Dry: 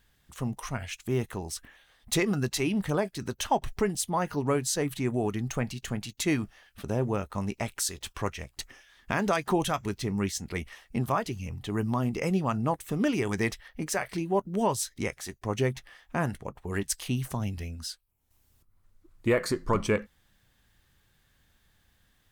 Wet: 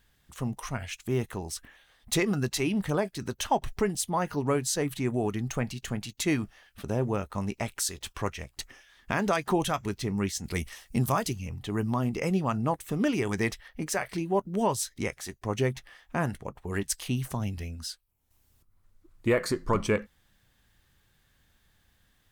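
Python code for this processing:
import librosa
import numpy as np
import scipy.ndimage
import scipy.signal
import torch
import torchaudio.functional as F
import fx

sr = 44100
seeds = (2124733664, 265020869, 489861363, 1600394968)

y = fx.bass_treble(x, sr, bass_db=4, treble_db=11, at=(10.44, 11.33))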